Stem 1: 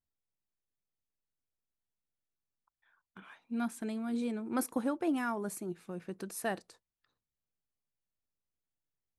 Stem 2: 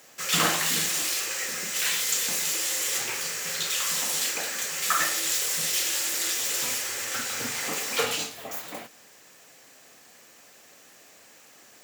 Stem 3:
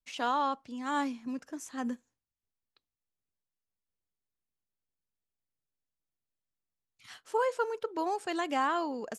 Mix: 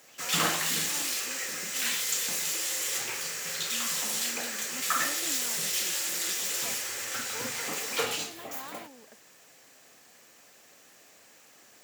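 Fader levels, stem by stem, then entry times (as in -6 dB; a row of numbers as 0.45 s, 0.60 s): -13.5 dB, -3.5 dB, -16.5 dB; 0.20 s, 0.00 s, 0.00 s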